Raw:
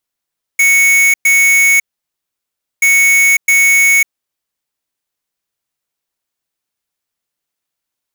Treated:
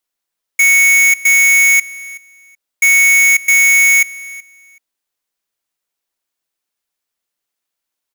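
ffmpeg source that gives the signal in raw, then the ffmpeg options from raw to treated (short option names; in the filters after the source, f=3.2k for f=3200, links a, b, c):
-f lavfi -i "aevalsrc='0.355*(2*lt(mod(2220*t,1),0.5)-1)*clip(min(mod(mod(t,2.23),0.66),0.55-mod(mod(t,2.23),0.66))/0.005,0,1)*lt(mod(t,2.23),1.32)':d=4.46:s=44100"
-af "equalizer=f=96:t=o:w=1.9:g=-8.5,aecho=1:1:376|752:0.0944|0.017"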